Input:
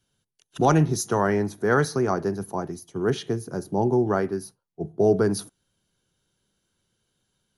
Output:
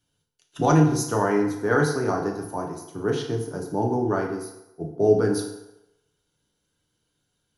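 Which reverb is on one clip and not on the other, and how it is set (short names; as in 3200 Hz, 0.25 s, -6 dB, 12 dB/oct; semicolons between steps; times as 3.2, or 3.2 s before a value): FDN reverb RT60 0.91 s, low-frequency decay 0.75×, high-frequency decay 0.75×, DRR 0.5 dB; gain -3 dB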